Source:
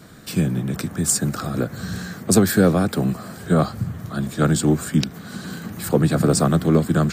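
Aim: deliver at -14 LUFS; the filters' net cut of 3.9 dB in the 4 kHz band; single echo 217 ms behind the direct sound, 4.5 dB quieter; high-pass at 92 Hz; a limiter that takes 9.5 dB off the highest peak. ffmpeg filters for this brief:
-af "highpass=92,equalizer=f=4000:t=o:g=-5,alimiter=limit=0.211:level=0:latency=1,aecho=1:1:217:0.596,volume=2.99"

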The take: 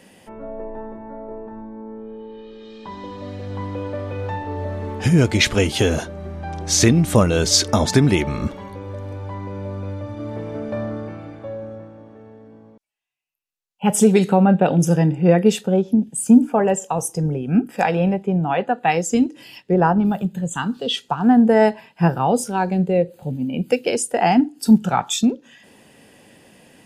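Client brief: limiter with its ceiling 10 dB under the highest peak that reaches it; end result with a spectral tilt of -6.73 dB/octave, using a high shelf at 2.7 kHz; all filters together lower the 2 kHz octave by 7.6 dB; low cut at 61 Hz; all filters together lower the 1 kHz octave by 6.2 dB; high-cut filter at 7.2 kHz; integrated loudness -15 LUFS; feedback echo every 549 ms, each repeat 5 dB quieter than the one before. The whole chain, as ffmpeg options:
-af "highpass=61,lowpass=7200,equalizer=f=1000:t=o:g=-7.5,equalizer=f=2000:t=o:g=-5,highshelf=f=2700:g=-5.5,alimiter=limit=0.224:level=0:latency=1,aecho=1:1:549|1098|1647|2196|2745|3294|3843:0.562|0.315|0.176|0.0988|0.0553|0.031|0.0173,volume=2.51"

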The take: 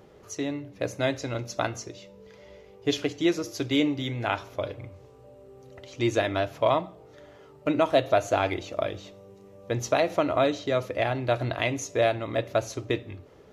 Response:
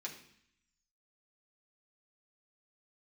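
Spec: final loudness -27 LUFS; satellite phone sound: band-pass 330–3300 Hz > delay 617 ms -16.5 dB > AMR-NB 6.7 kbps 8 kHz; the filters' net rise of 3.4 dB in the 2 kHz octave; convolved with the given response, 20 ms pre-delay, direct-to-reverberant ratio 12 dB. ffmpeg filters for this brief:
-filter_complex "[0:a]equalizer=f=2000:t=o:g=5,asplit=2[s0][s1];[1:a]atrim=start_sample=2205,adelay=20[s2];[s1][s2]afir=irnorm=-1:irlink=0,volume=0.299[s3];[s0][s3]amix=inputs=2:normalize=0,highpass=330,lowpass=3300,aecho=1:1:617:0.15,volume=1.26" -ar 8000 -c:a libopencore_amrnb -b:a 6700

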